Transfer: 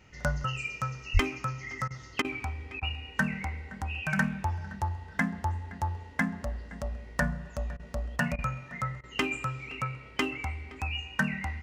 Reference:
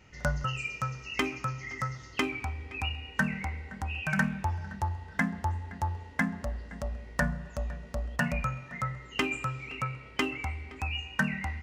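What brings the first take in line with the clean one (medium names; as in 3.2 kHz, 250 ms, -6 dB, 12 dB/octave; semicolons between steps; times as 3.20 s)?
de-plosive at 1.13 s; interpolate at 1.88/2.22/2.80/7.77/8.36/9.01 s, 24 ms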